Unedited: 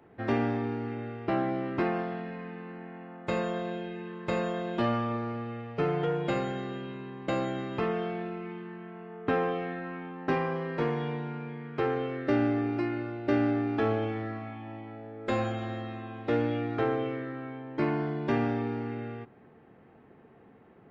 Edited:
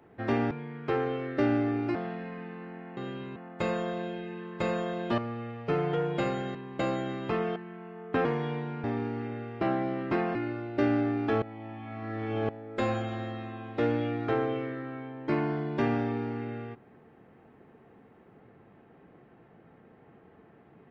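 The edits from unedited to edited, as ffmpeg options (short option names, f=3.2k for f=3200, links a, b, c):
-filter_complex "[0:a]asplit=13[a][b][c][d][e][f][g][h][i][j][k][l][m];[a]atrim=end=0.512[n];[b]atrim=start=11.408:end=12.852[o];[c]atrim=start=2.018:end=3.042[p];[d]atrim=start=6.648:end=7.042[q];[e]atrim=start=3.038:end=4.862[r];[f]atrim=start=5.278:end=6.652[s];[g]atrim=start=7.038:end=8.052[t];[h]atrim=start=8.698:end=9.392[u];[i]atrim=start=10.818:end=11.412[v];[j]atrim=start=0.508:end=2.022[w];[k]atrim=start=12.848:end=13.922[x];[l]atrim=start=13.918:end=14.992,asetpts=PTS-STARTPTS,areverse[y];[m]atrim=start=14.988[z];[n][o]acrossfade=d=0.004:c1=hsin:c2=hsin[aa];[aa][p]acrossfade=d=0.004:c1=hsin:c2=hsin[ab];[ab][q]acrossfade=d=0.004:c1=hsin:c2=hsin[ac];[ac][r]acrossfade=d=0.004:c1=hsin:c2=hsin[ad];[ad][s]acrossfade=d=0.004:c1=hsin:c2=hsin[ae];[ae][t]acrossfade=d=0.004:c1=hsin:c2=hsin[af];[af][u]acrossfade=d=0.004:c1=hsin:c2=hsin[ag];[ag][v]acrossfade=d=0.004:c1=hsin:c2=hsin[ah];[ah][w]acrossfade=d=0.004:c1=hsin:c2=hsin[ai];[ai][x]acrossfade=d=0.004:c1=hsin:c2=hsin[aj];[aj][y]acrossfade=d=0.004:c1=hsin:c2=hsin[ak];[ak][z]acrossfade=d=0.004:c1=hsin:c2=hsin"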